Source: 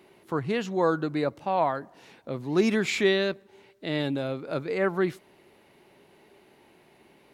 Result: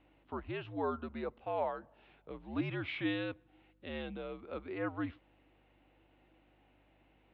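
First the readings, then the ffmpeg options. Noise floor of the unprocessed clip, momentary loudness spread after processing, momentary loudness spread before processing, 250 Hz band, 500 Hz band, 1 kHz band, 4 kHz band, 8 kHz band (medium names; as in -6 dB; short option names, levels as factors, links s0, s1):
-59 dBFS, 11 LU, 12 LU, -11.0 dB, -13.5 dB, -11.5 dB, -14.0 dB, under -35 dB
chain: -af "equalizer=f=125:t=o:w=1:g=-7,equalizer=f=250:t=o:w=1:g=-12,equalizer=f=500:t=o:w=1:g=-5,equalizer=f=1000:t=o:w=1:g=-4,equalizer=f=2000:t=o:w=1:g=-9,highpass=f=150:t=q:w=0.5412,highpass=f=150:t=q:w=1.307,lowpass=f=3100:t=q:w=0.5176,lowpass=f=3100:t=q:w=0.7071,lowpass=f=3100:t=q:w=1.932,afreqshift=-77,aeval=exprs='val(0)+0.000398*(sin(2*PI*50*n/s)+sin(2*PI*2*50*n/s)/2+sin(2*PI*3*50*n/s)/3+sin(2*PI*4*50*n/s)/4+sin(2*PI*5*50*n/s)/5)':c=same,volume=0.708"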